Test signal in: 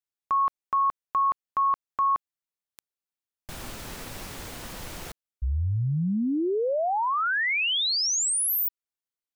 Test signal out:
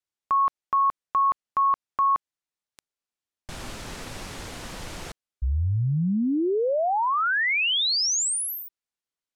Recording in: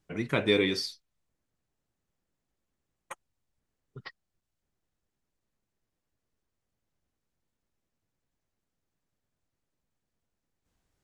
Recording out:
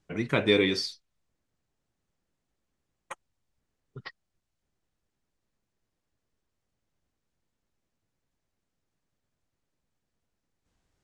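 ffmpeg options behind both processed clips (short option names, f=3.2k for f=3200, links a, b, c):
-af "lowpass=9k,volume=2dB"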